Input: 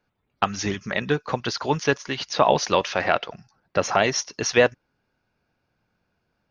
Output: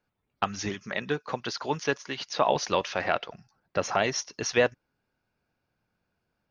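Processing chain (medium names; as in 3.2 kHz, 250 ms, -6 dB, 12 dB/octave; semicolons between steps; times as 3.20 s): 0.69–2.56 s: high-pass 170 Hz 6 dB/octave; trim -5.5 dB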